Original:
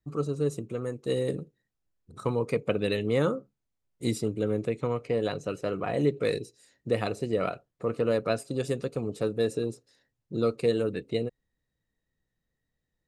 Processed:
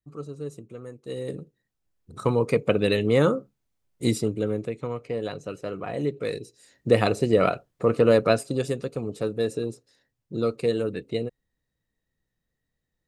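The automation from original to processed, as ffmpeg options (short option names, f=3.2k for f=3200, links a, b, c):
-af "volume=15.5dB,afade=t=in:st=1.07:d=1.19:silence=0.237137,afade=t=out:st=4.04:d=0.68:silence=0.421697,afade=t=in:st=6.39:d=0.52:silence=0.316228,afade=t=out:st=8.22:d=0.54:silence=0.446684"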